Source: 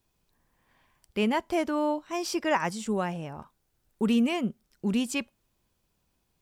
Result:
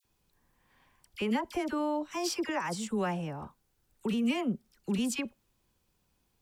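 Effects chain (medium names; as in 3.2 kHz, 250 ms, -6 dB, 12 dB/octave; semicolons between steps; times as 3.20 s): peak limiter -22.5 dBFS, peak gain reduction 9 dB; band-stop 640 Hz, Q 13; phase dispersion lows, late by 48 ms, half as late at 1.4 kHz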